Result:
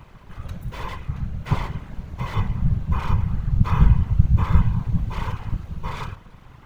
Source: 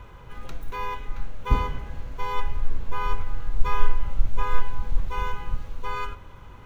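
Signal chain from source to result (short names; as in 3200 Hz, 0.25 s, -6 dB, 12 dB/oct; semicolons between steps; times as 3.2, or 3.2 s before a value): full-wave rectifier; whisperiser; gain -1 dB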